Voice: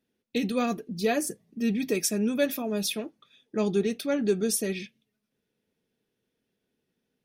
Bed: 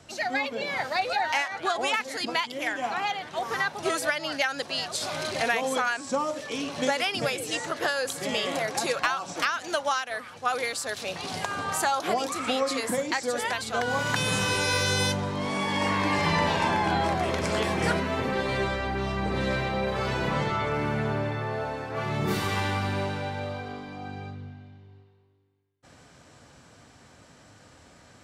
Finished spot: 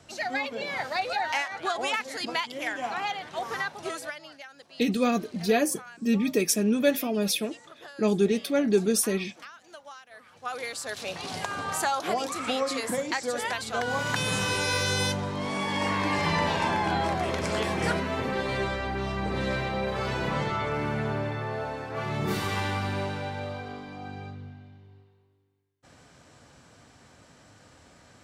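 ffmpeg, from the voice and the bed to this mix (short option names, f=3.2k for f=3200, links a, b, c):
-filter_complex "[0:a]adelay=4450,volume=2.5dB[a];[1:a]volume=15.5dB,afade=t=out:st=3.42:d=0.95:silence=0.141254,afade=t=in:st=10.08:d=0.96:silence=0.133352[b];[a][b]amix=inputs=2:normalize=0"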